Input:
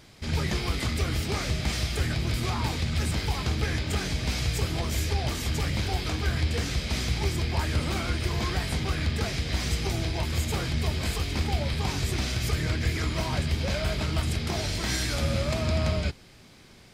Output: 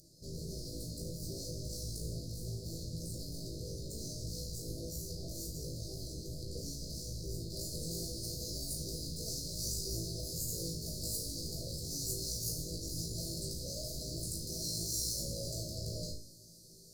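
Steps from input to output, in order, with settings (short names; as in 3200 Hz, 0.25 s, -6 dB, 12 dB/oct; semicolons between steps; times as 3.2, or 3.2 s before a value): one-sided clip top -35 dBFS; limiter -22.5 dBFS, peak gain reduction 4.5 dB; high shelf 2800 Hz -11 dB, from 7.5 s -2.5 dB; Chebyshev band-stop 610–4300 Hz, order 5; notches 60/120 Hz; flutter echo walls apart 3.1 m, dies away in 0.39 s; upward compressor, threshold -55 dBFS; pre-emphasis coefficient 0.8; reverb RT60 0.30 s, pre-delay 6 ms, DRR 6 dB; gain +3 dB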